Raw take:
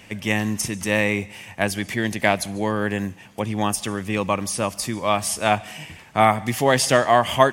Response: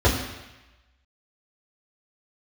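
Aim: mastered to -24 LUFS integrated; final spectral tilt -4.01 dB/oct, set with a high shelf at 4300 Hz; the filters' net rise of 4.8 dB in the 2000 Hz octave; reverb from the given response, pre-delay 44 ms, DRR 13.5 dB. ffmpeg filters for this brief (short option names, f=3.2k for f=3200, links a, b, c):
-filter_complex "[0:a]equalizer=f=2k:t=o:g=4,highshelf=f=4.3k:g=8.5,asplit=2[a][b];[1:a]atrim=start_sample=2205,adelay=44[c];[b][c]afir=irnorm=-1:irlink=0,volume=-32dB[d];[a][d]amix=inputs=2:normalize=0,volume=-5dB"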